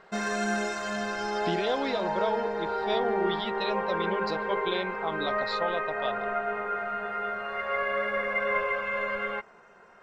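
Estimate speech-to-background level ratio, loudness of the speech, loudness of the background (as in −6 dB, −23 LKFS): −3.0 dB, −33.0 LKFS, −30.0 LKFS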